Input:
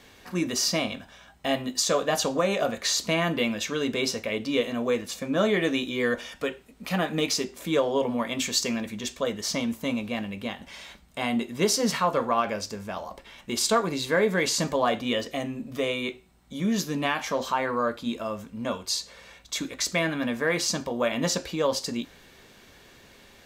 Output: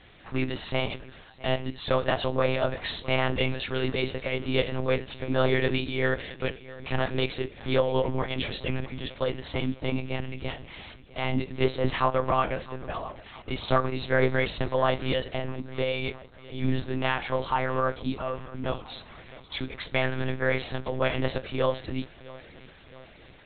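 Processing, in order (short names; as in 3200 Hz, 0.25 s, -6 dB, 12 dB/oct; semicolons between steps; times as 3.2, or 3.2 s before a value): thinning echo 0.66 s, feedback 57%, high-pass 160 Hz, level -19 dB; monotone LPC vocoder at 8 kHz 130 Hz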